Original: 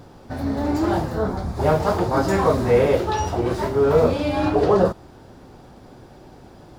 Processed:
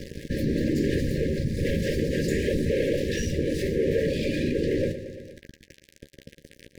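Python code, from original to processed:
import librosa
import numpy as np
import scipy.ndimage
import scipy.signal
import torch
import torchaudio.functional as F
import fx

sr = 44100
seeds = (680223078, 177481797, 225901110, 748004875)

y = fx.octave_divider(x, sr, octaves=1, level_db=-4.0)
y = fx.rider(y, sr, range_db=5, speed_s=2.0)
y = 10.0 ** (-19.0 / 20.0) * np.tanh(y / 10.0 ** (-19.0 / 20.0))
y = fx.whisperise(y, sr, seeds[0])
y = np.sign(y) * np.maximum(np.abs(y) - 10.0 ** (-38.5 / 20.0), 0.0)
y = fx.brickwall_bandstop(y, sr, low_hz=590.0, high_hz=1600.0)
y = fx.doubler(y, sr, ms=13.0, db=-10)
y = fx.echo_feedback(y, sr, ms=115, feedback_pct=54, wet_db=-22)
y = fx.env_flatten(y, sr, amount_pct=50)
y = y * librosa.db_to_amplitude(-3.0)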